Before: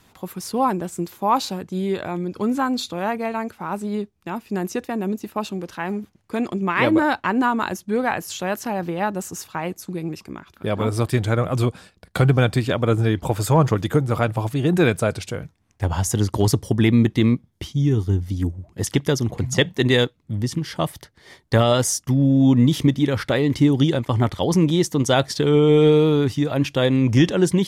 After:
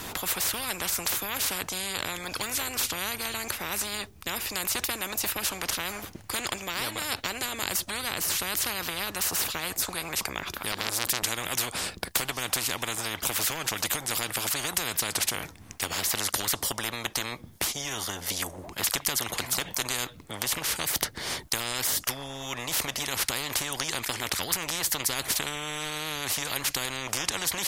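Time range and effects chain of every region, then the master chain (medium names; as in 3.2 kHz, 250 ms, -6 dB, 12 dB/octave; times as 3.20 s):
10.72–11.23 s: high-pass 130 Hz 6 dB/octave + transformer saturation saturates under 1.9 kHz
whole clip: treble shelf 10 kHz +7.5 dB; compression, threshold -19 dBFS; spectrum-flattening compressor 10:1; trim +5.5 dB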